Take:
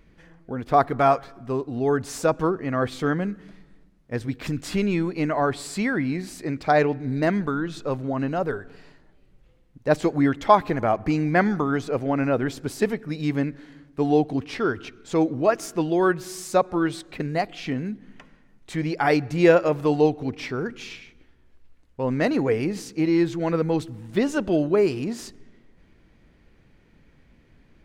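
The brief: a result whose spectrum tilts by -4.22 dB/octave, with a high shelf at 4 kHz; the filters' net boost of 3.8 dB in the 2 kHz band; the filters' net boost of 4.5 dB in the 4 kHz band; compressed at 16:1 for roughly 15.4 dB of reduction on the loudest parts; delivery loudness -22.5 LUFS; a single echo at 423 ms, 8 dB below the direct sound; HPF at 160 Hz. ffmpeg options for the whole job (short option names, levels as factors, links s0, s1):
-af "highpass=160,equalizer=f=2000:t=o:g=4.5,highshelf=f=4000:g=-5.5,equalizer=f=4000:t=o:g=7.5,acompressor=threshold=0.0562:ratio=16,aecho=1:1:423:0.398,volume=2.66"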